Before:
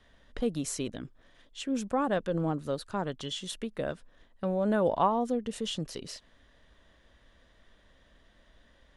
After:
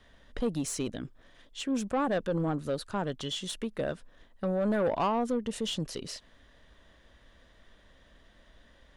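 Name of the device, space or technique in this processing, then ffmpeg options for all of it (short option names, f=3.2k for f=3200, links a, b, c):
saturation between pre-emphasis and de-emphasis: -af "highshelf=f=4.2k:g=9,asoftclip=type=tanh:threshold=-24.5dB,highshelf=f=4.2k:g=-9,volume=2.5dB"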